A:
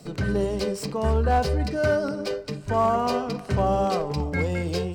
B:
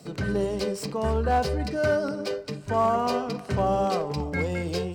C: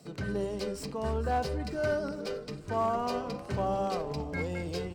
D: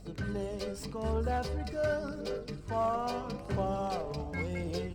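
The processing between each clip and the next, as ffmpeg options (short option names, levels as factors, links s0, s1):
-af "highpass=f=91:p=1,volume=0.891"
-filter_complex "[0:a]asplit=7[s0][s1][s2][s3][s4][s5][s6];[s1]adelay=454,afreqshift=-140,volume=0.158[s7];[s2]adelay=908,afreqshift=-280,volume=0.0966[s8];[s3]adelay=1362,afreqshift=-420,volume=0.0589[s9];[s4]adelay=1816,afreqshift=-560,volume=0.0359[s10];[s5]adelay=2270,afreqshift=-700,volume=0.0219[s11];[s6]adelay=2724,afreqshift=-840,volume=0.0133[s12];[s0][s7][s8][s9][s10][s11][s12]amix=inputs=7:normalize=0,volume=0.473"
-af "aphaser=in_gain=1:out_gain=1:delay=1.8:decay=0.28:speed=0.85:type=triangular,aeval=exprs='val(0)+0.00447*(sin(2*PI*50*n/s)+sin(2*PI*2*50*n/s)/2+sin(2*PI*3*50*n/s)/3+sin(2*PI*4*50*n/s)/4+sin(2*PI*5*50*n/s)/5)':c=same,volume=0.75"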